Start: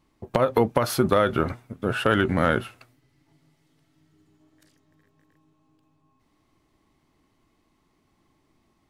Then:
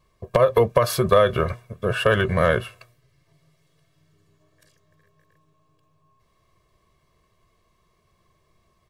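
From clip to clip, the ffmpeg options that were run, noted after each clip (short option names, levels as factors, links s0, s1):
-af "aecho=1:1:1.8:0.96"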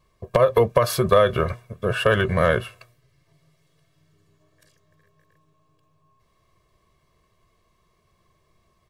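-af anull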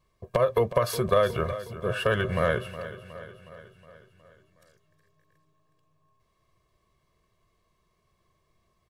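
-af "aecho=1:1:365|730|1095|1460|1825|2190:0.2|0.114|0.0648|0.037|0.0211|0.012,volume=0.501"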